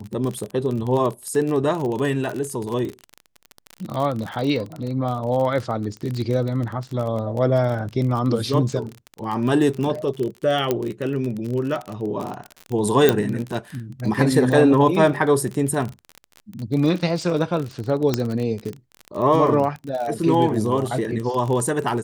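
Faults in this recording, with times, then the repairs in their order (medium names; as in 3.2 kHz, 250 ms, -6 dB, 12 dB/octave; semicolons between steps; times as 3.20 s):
crackle 31 per s -25 dBFS
10.71 s: pop -7 dBFS
13.09 s: pop -2 dBFS
18.14 s: pop -6 dBFS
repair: de-click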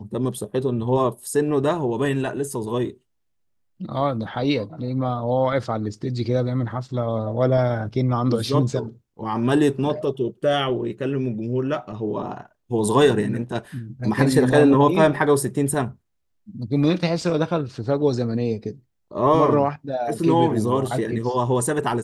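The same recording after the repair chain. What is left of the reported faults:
nothing left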